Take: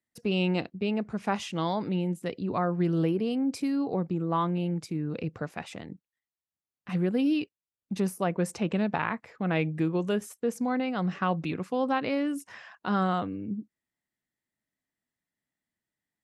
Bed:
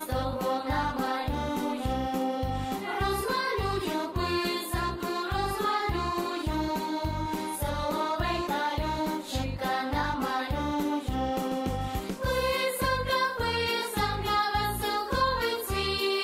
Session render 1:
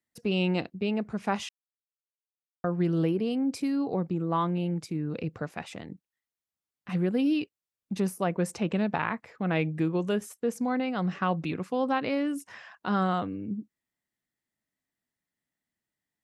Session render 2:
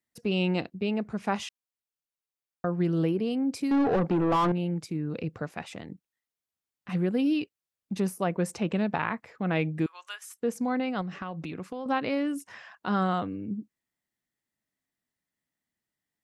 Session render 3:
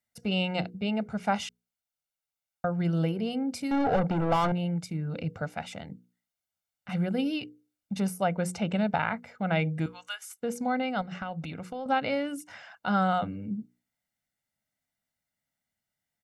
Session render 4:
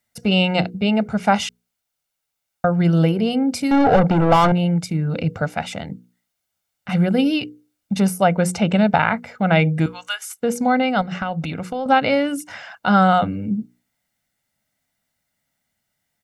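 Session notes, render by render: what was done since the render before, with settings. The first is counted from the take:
1.49–2.64 mute
3.71–4.52 overdrive pedal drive 27 dB, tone 1200 Hz, clips at -16 dBFS; 9.86–10.37 inverse Chebyshev high-pass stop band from 240 Hz, stop band 70 dB; 11.01–11.86 compressor, threshold -32 dBFS
notches 60/120/180/240/300/360/420/480 Hz; comb 1.4 ms, depth 61%
gain +11 dB; limiter -3 dBFS, peak gain reduction 0.5 dB

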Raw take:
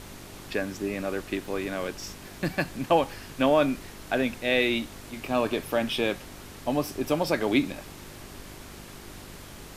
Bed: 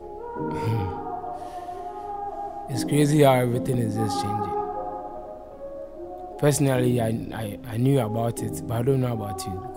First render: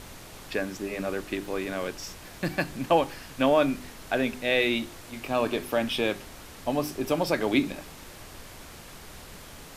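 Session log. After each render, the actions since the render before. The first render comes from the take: de-hum 50 Hz, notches 8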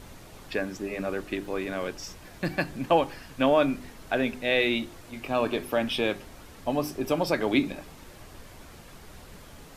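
denoiser 6 dB, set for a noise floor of -46 dBFS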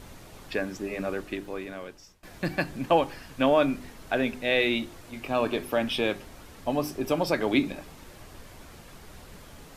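1.08–2.23 fade out, to -22.5 dB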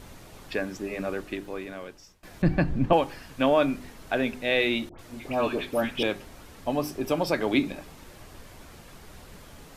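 2.42–2.93 RIAA curve playback; 4.89–6.03 dispersion highs, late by 98 ms, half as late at 1400 Hz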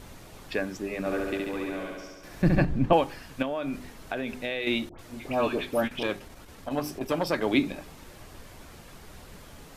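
0.99–2.65 flutter echo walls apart 11.8 m, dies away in 1.4 s; 3.42–4.67 compressor 12:1, threshold -26 dBFS; 5.87–7.42 core saturation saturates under 750 Hz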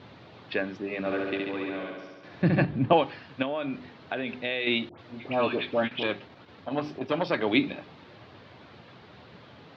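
elliptic band-pass 100–4000 Hz, stop band 40 dB; dynamic EQ 2700 Hz, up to +4 dB, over -43 dBFS, Q 0.98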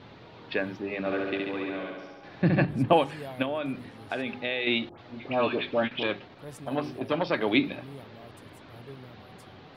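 add bed -23.5 dB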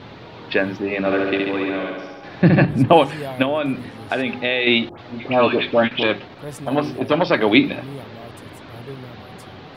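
gain +10 dB; limiter -1 dBFS, peak gain reduction 2.5 dB

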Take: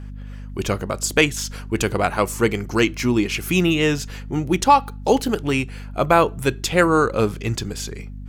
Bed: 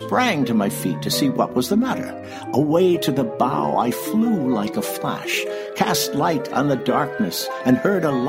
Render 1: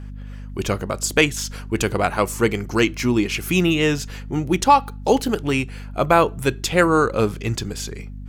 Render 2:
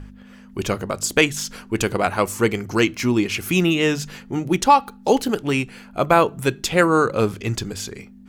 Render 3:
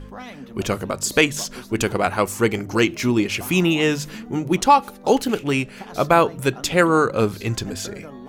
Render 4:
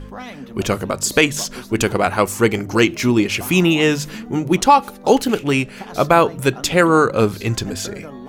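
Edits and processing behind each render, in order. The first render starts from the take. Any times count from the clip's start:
nothing audible
de-hum 50 Hz, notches 3
add bed -19.5 dB
gain +3.5 dB; limiter -1 dBFS, peak gain reduction 2.5 dB

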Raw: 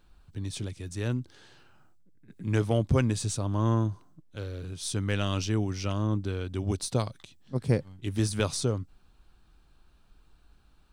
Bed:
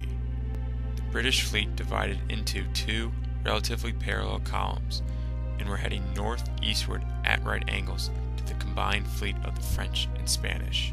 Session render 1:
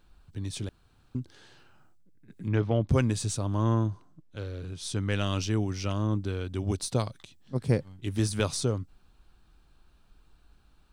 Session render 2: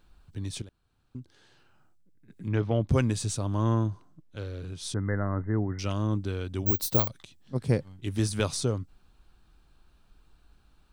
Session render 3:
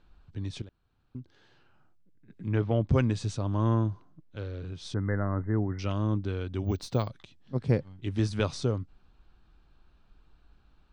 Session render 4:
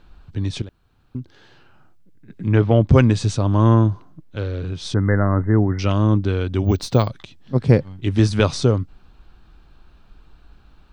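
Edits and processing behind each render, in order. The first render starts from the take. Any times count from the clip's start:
0.69–1.15 room tone; 2.48–2.89 air absorption 220 m; 3.63–5.12 high shelf 9100 Hz -9 dB
0.62–2.84 fade in, from -13 dB; 4.94–5.79 brick-wall FIR low-pass 2100 Hz; 6.66–7.08 careless resampling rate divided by 2×, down filtered, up zero stuff
air absorption 130 m
gain +11.5 dB; limiter -3 dBFS, peak gain reduction 1 dB

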